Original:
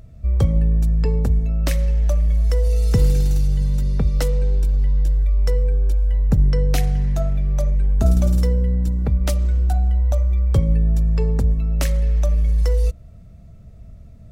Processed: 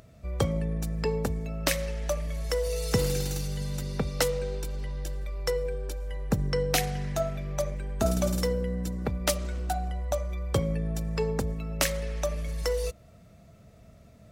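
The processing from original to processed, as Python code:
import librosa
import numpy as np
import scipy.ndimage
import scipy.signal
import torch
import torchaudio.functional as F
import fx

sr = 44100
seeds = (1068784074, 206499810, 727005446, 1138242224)

y = fx.highpass(x, sr, hz=500.0, slope=6)
y = F.gain(torch.from_numpy(y), 3.0).numpy()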